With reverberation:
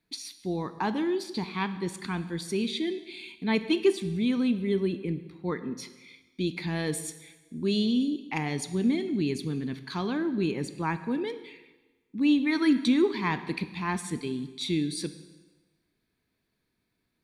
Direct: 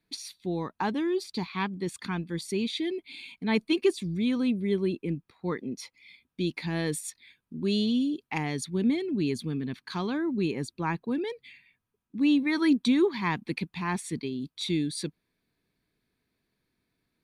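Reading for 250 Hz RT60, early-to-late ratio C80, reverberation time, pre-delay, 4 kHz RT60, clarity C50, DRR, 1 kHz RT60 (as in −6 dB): 1.2 s, 14.5 dB, 1.2 s, 6 ms, 1.1 s, 12.5 dB, 10.5 dB, 1.2 s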